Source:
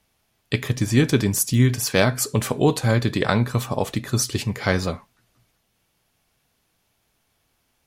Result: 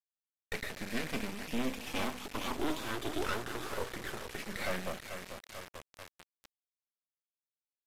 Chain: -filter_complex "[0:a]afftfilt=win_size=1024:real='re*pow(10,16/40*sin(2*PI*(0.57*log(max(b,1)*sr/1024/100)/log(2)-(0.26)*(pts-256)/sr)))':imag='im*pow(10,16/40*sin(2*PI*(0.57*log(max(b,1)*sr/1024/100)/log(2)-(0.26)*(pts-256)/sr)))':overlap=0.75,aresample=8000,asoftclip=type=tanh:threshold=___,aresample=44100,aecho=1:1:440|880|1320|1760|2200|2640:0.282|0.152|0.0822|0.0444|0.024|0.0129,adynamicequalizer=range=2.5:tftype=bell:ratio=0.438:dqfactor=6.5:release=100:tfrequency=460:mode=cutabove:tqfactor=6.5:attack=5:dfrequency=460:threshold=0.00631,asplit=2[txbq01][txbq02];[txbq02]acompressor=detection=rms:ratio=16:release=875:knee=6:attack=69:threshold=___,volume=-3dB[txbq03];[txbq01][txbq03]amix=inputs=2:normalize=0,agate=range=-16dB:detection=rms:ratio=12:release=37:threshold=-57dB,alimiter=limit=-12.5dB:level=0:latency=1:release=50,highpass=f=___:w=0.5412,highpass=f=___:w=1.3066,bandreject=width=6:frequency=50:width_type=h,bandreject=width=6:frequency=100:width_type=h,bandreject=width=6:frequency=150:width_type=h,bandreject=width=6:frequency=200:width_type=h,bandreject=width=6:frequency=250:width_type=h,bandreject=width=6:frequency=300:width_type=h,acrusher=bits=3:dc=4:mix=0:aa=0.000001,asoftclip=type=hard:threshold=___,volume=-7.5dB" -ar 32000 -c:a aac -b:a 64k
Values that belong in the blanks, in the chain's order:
-16dB, -33dB, 220, 220, -16dB